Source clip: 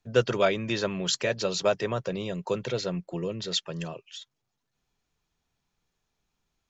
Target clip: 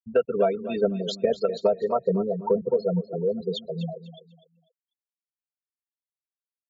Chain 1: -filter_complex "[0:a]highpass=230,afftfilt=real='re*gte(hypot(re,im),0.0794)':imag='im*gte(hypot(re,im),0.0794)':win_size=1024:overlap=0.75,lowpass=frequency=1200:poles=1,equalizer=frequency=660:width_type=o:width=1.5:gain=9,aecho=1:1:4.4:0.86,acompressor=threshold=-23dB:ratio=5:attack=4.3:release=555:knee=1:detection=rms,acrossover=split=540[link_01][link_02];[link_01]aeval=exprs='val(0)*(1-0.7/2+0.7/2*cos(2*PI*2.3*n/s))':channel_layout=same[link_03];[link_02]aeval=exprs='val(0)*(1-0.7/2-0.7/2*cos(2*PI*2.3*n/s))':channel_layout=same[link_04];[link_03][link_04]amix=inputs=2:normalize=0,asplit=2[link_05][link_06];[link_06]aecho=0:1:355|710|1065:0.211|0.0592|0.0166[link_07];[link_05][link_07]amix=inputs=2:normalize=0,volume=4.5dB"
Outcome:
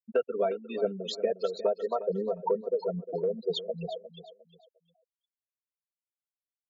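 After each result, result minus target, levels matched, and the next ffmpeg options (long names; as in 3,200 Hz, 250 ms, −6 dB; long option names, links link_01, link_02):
echo 108 ms late; downward compressor: peak gain reduction +5.5 dB; 250 Hz band −4.0 dB
-filter_complex "[0:a]highpass=230,afftfilt=real='re*gte(hypot(re,im),0.0794)':imag='im*gte(hypot(re,im),0.0794)':win_size=1024:overlap=0.75,lowpass=frequency=1200:poles=1,equalizer=frequency=660:width_type=o:width=1.5:gain=9,aecho=1:1:4.4:0.86,acompressor=threshold=-23dB:ratio=5:attack=4.3:release=555:knee=1:detection=rms,acrossover=split=540[link_01][link_02];[link_01]aeval=exprs='val(0)*(1-0.7/2+0.7/2*cos(2*PI*2.3*n/s))':channel_layout=same[link_03];[link_02]aeval=exprs='val(0)*(1-0.7/2-0.7/2*cos(2*PI*2.3*n/s))':channel_layout=same[link_04];[link_03][link_04]amix=inputs=2:normalize=0,asplit=2[link_05][link_06];[link_06]aecho=0:1:247|494|741:0.211|0.0592|0.0166[link_07];[link_05][link_07]amix=inputs=2:normalize=0,volume=4.5dB"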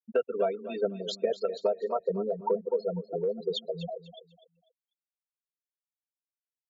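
downward compressor: peak gain reduction +5.5 dB; 250 Hz band −4.0 dB
-filter_complex "[0:a]highpass=230,afftfilt=real='re*gte(hypot(re,im),0.0794)':imag='im*gte(hypot(re,im),0.0794)':win_size=1024:overlap=0.75,lowpass=frequency=1200:poles=1,equalizer=frequency=660:width_type=o:width=1.5:gain=9,aecho=1:1:4.4:0.86,acompressor=threshold=-16dB:ratio=5:attack=4.3:release=555:knee=1:detection=rms,acrossover=split=540[link_01][link_02];[link_01]aeval=exprs='val(0)*(1-0.7/2+0.7/2*cos(2*PI*2.3*n/s))':channel_layout=same[link_03];[link_02]aeval=exprs='val(0)*(1-0.7/2-0.7/2*cos(2*PI*2.3*n/s))':channel_layout=same[link_04];[link_03][link_04]amix=inputs=2:normalize=0,asplit=2[link_05][link_06];[link_06]aecho=0:1:247|494|741:0.211|0.0592|0.0166[link_07];[link_05][link_07]amix=inputs=2:normalize=0,volume=4.5dB"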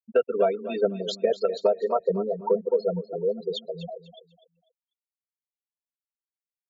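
250 Hz band −4.5 dB
-filter_complex "[0:a]afftfilt=real='re*gte(hypot(re,im),0.0794)':imag='im*gte(hypot(re,im),0.0794)':win_size=1024:overlap=0.75,lowpass=frequency=1200:poles=1,equalizer=frequency=660:width_type=o:width=1.5:gain=9,aecho=1:1:4.4:0.86,acompressor=threshold=-16dB:ratio=5:attack=4.3:release=555:knee=1:detection=rms,acrossover=split=540[link_01][link_02];[link_01]aeval=exprs='val(0)*(1-0.7/2+0.7/2*cos(2*PI*2.3*n/s))':channel_layout=same[link_03];[link_02]aeval=exprs='val(0)*(1-0.7/2-0.7/2*cos(2*PI*2.3*n/s))':channel_layout=same[link_04];[link_03][link_04]amix=inputs=2:normalize=0,asplit=2[link_05][link_06];[link_06]aecho=0:1:247|494|741:0.211|0.0592|0.0166[link_07];[link_05][link_07]amix=inputs=2:normalize=0,volume=4.5dB"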